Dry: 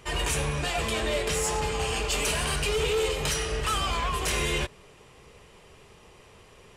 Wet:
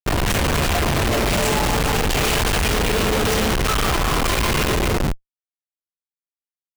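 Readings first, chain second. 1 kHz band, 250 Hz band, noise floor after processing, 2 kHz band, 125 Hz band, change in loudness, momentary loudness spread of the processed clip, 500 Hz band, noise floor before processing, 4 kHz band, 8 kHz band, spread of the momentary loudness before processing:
+9.0 dB, +14.0 dB, under -85 dBFS, +8.0 dB, +10.5 dB, +8.0 dB, 2 LU, +7.0 dB, -54 dBFS, +6.5 dB, +5.0 dB, 2 LU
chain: octaver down 1 oct, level +2 dB; non-linear reverb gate 0.5 s flat, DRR -1.5 dB; Schmitt trigger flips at -28.5 dBFS; gain +5 dB

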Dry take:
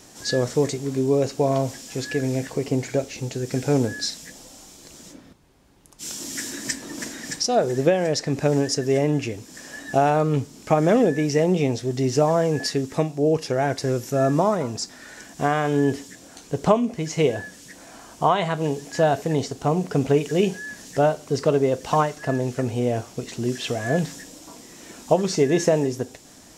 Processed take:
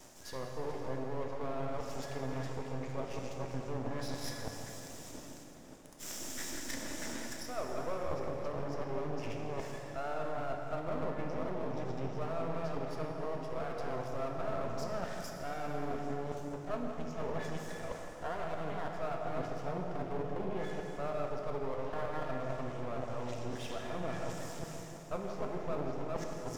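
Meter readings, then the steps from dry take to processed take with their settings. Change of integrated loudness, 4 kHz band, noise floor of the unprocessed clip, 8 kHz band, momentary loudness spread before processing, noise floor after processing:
-17.0 dB, -17.0 dB, -47 dBFS, -16.0 dB, 14 LU, -47 dBFS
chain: reverse delay 0.32 s, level -4 dB; treble ducked by the level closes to 1200 Hz, closed at -14 dBFS; bell 630 Hz +7.5 dB 0.57 oct; notch 4200 Hz, Q 7.9; reverse; compressor 4:1, threshold -31 dBFS, peak gain reduction 19.5 dB; reverse; half-wave rectifier; on a send: darkening echo 0.163 s, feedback 57%, level -10 dB; on the sum: plate-style reverb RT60 3.4 s, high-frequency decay 0.8×, DRR 2 dB; gain -4.5 dB

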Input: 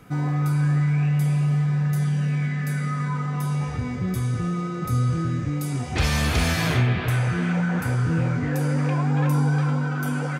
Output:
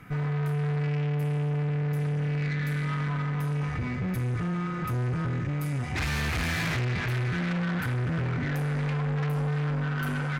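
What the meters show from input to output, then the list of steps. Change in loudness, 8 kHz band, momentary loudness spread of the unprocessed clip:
-5.5 dB, -9.0 dB, 5 LU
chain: ten-band EQ 125 Hz +3 dB, 500 Hz -5 dB, 2000 Hz +8 dB, 4000 Hz -4 dB, 8000 Hz -6 dB; tube stage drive 26 dB, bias 0.35

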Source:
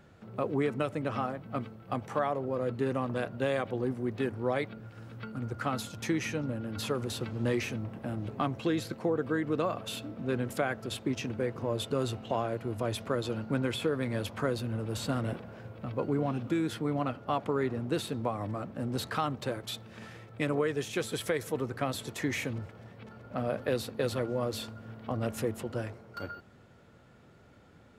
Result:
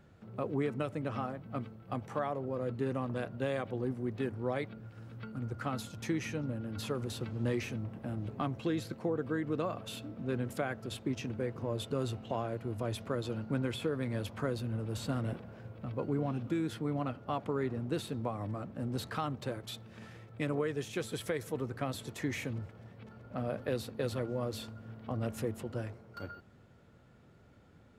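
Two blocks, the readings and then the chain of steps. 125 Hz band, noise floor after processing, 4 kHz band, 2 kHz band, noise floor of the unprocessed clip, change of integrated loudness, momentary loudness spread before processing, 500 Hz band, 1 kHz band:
-1.5 dB, -60 dBFS, -5.5 dB, -5.5 dB, -57 dBFS, -3.5 dB, 9 LU, -4.5 dB, -5.0 dB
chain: low shelf 260 Hz +5 dB; gain -5.5 dB

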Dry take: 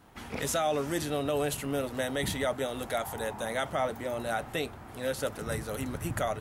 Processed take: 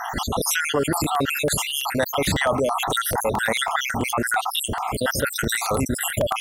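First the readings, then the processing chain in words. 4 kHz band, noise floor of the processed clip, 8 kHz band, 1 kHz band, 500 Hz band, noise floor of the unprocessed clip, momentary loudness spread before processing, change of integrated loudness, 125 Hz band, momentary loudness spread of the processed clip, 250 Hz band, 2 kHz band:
+13.0 dB, -31 dBFS, +13.0 dB, +11.0 dB, +6.0 dB, -46 dBFS, 6 LU, +9.5 dB, +8.0 dB, 3 LU, +7.5 dB, +12.5 dB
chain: random spectral dropouts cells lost 67%; dynamic EQ 1100 Hz, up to +7 dB, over -52 dBFS, Q 1.5; crackling interface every 0.11 s, samples 64, repeat, from 0.93; fast leveller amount 70%; gain +6 dB

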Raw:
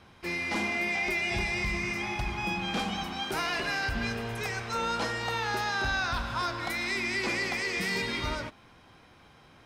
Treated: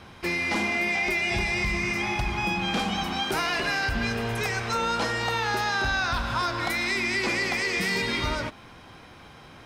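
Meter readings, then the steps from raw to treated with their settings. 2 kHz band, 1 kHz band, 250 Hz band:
+4.5 dB, +4.5 dB, +4.5 dB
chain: compressor 2:1, threshold -35 dBFS, peak gain reduction 5.5 dB; gain +8.5 dB

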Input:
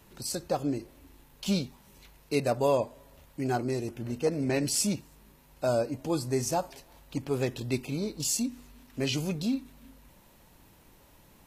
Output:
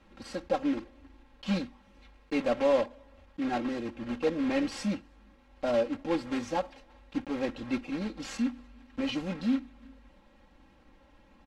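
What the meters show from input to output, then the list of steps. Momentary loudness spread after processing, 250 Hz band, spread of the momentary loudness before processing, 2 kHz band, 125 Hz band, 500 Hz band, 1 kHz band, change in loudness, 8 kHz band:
11 LU, +1.0 dB, 10 LU, +0.5 dB, -9.5 dB, -1.0 dB, -1.0 dB, -1.5 dB, -17.0 dB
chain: block floating point 3-bit; LPF 2800 Hz 12 dB/oct; comb 3.7 ms, depth 93%; gain -3.5 dB

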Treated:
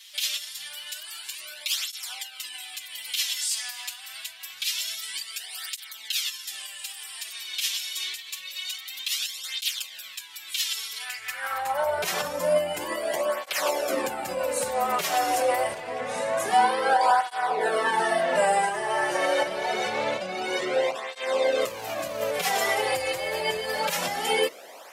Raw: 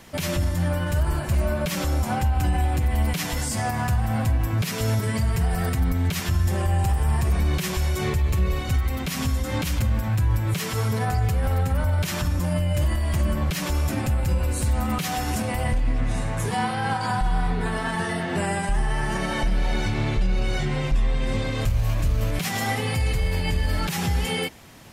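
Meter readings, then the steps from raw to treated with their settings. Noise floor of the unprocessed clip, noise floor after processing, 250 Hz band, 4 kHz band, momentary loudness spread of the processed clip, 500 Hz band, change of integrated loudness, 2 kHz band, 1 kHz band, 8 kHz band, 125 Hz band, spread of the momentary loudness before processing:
-29 dBFS, -44 dBFS, -12.5 dB, +5.0 dB, 12 LU, +4.5 dB, -2.5 dB, +1.0 dB, +3.5 dB, +2.5 dB, -29.0 dB, 3 LU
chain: high-pass sweep 3400 Hz -> 540 Hz, 10.97–11.96; notches 50/100/150 Hz; tape flanging out of phase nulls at 0.26 Hz, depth 4.8 ms; gain +4.5 dB

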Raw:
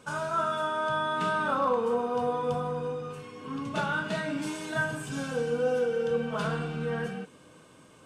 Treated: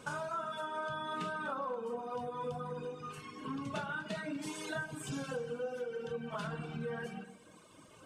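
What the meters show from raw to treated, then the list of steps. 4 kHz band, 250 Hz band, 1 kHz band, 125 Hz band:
-7.5 dB, -8.5 dB, -10.0 dB, -9.0 dB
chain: reverb removal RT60 1.5 s; compressor, threshold -38 dBFS, peak gain reduction 13.5 dB; echo with dull and thin repeats by turns 0.122 s, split 1100 Hz, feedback 58%, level -12 dB; gain +1.5 dB

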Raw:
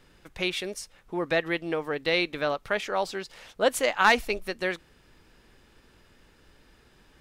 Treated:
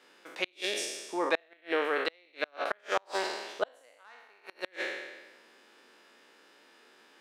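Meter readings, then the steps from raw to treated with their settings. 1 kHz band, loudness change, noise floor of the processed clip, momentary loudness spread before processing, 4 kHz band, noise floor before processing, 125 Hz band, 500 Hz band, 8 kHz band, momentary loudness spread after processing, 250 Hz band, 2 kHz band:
-7.0 dB, -6.0 dB, -63 dBFS, 14 LU, -5.5 dB, -60 dBFS, under -20 dB, -6.0 dB, -3.5 dB, 13 LU, -8.0 dB, -7.0 dB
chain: spectral trails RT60 1.21 s; Bessel high-pass 400 Hz, order 6; high shelf 11000 Hz -9.5 dB; flipped gate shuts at -15 dBFS, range -37 dB

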